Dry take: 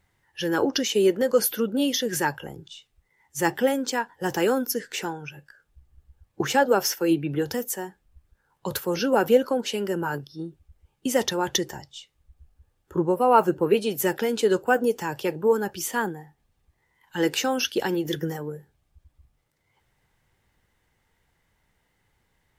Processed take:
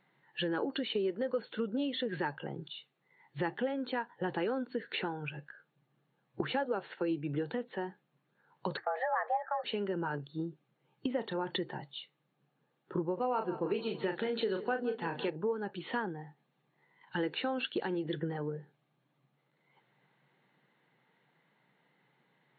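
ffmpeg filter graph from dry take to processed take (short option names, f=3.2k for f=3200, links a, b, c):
-filter_complex "[0:a]asettb=1/sr,asplit=3[a][b][c];[a]atrim=end=8.774[d];[b]atrim=start=8.77:end=9.64,asetpts=PTS-STARTPTS,afade=t=in:d=0.004:c=qsin,afade=t=out:st=0.866:d=0.004:c=qsin,highshelf=f=2k:t=q:w=3:g=-11.5,agate=range=-33dB:threshold=-34dB:ratio=3:release=100:detection=peak,afreqshift=310[e];[c]atrim=start=9.636[f];[d][e]acrossfade=d=0.004:c1=hsin:c2=qsin[g];[g][f]acrossfade=d=0.004:c1=qsin:c2=hsin,asettb=1/sr,asplit=3[h][i][j];[h]atrim=end=11.074[k];[i]atrim=start=11.07:end=11.54,asetpts=PTS-STARTPTS,afade=t=in:d=0.004:c=qsin,afade=t=out:st=0.466:d=0.004:c=qsin,aemphasis=mode=reproduction:type=75kf,asplit=2[l][m];[m]adelay=33,volume=-13dB[n];[l][n]amix=inputs=2:normalize=0,atrim=end_sample=20727[o];[j]atrim=start=11.536[p];[k][o]acrossfade=d=0.004:c1=hsin:c2=qsin[q];[q][p]acrossfade=d=0.004:c1=qsin:c2=hsin,asettb=1/sr,asplit=3[r][s][t];[r]atrim=end=13.144[u];[s]atrim=start=13.14:end=15.3,asetpts=PTS-STARTPTS,afade=t=in:d=0.004:c=qsin,afade=t=out:st=2.156:d=0.004:c=qsin,highshelf=f=4.5k:g=11.5,asplit=2[v][w];[w]adelay=36,volume=-7dB[x];[v][x]amix=inputs=2:normalize=0,atrim=end_sample=95256,aecho=1:1:163|326|489|652:0.141|0.0664|0.0312|0.0147,atrim=end_sample=95256[y];[t]atrim=start=15.296[z];[u][y]acrossfade=d=0.004:c1=hsin:c2=qsin[aa];[aa][z]acrossfade=d=0.004:c1=qsin:c2=hsin,afftfilt=real='re*between(b*sr/4096,120,4400)':imag='im*between(b*sr/4096,120,4400)':win_size=4096:overlap=0.75,aemphasis=mode=reproduction:type=50fm,acompressor=threshold=-34dB:ratio=4,volume=1dB"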